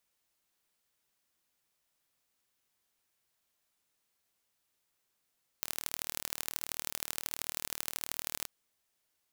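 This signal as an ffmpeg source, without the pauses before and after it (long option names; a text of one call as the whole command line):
ffmpeg -f lavfi -i "aevalsrc='0.501*eq(mod(n,1142),0)*(0.5+0.5*eq(mod(n,3426),0))':duration=2.84:sample_rate=44100" out.wav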